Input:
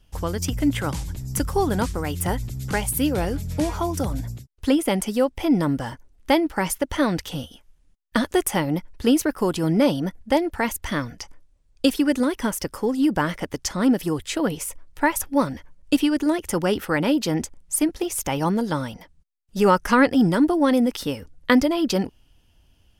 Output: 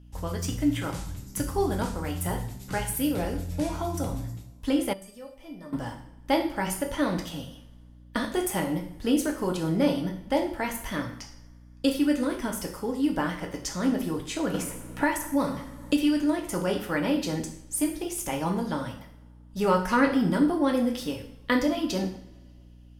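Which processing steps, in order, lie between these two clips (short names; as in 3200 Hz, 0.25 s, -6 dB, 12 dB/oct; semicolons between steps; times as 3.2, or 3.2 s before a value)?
two-slope reverb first 0.56 s, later 2.3 s, from -25 dB, DRR 1 dB; hum 60 Hz, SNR 22 dB; 4.93–5.73 resonator 600 Hz, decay 0.22 s, harmonics all, mix 90%; 14.54–16.21 three-band squash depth 70%; gain -8 dB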